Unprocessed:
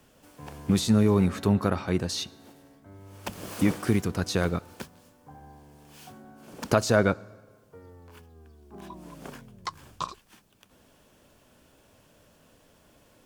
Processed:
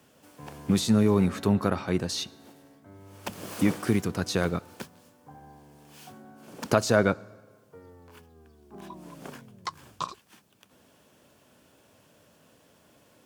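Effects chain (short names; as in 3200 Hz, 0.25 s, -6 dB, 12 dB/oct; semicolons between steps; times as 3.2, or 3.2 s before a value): HPF 98 Hz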